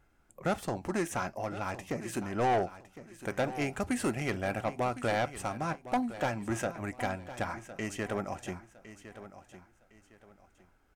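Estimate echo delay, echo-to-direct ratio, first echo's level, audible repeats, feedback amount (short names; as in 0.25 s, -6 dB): 1.059 s, -13.5 dB, -14.0 dB, 2, 29%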